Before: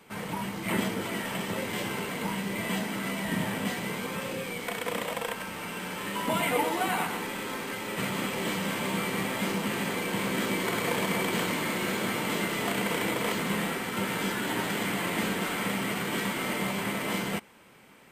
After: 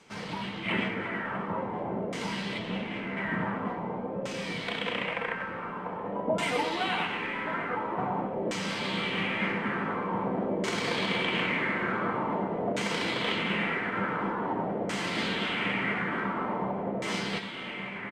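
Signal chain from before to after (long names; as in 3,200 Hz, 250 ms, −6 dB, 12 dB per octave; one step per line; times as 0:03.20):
0:02.58–0:03.17: running median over 25 samples
single-tap delay 1,177 ms −7 dB
auto-filter low-pass saw down 0.47 Hz 570–6,400 Hz
level −2.5 dB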